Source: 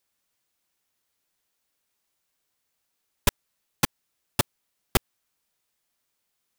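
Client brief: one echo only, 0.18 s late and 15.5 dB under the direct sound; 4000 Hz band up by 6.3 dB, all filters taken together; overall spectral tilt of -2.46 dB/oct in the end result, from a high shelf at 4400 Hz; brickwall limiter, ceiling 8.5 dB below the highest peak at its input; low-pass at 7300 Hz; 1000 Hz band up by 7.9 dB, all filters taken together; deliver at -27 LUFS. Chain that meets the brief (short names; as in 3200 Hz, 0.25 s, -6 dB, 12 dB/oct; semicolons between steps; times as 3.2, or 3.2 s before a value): LPF 7300 Hz; bell 1000 Hz +9 dB; bell 4000 Hz +5.5 dB; high shelf 4400 Hz +4.5 dB; limiter -10.5 dBFS; echo 0.18 s -15.5 dB; gain +6 dB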